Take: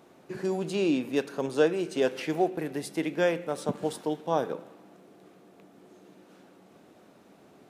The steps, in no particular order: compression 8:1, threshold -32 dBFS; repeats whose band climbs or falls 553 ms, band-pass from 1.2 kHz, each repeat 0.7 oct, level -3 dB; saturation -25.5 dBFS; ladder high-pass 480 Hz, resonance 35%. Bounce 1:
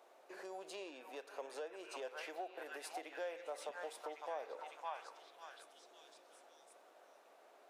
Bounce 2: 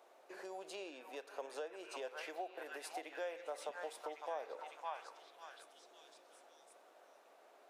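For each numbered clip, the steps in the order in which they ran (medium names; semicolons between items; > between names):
repeats whose band climbs or falls > compression > saturation > ladder high-pass; repeats whose band climbs or falls > compression > ladder high-pass > saturation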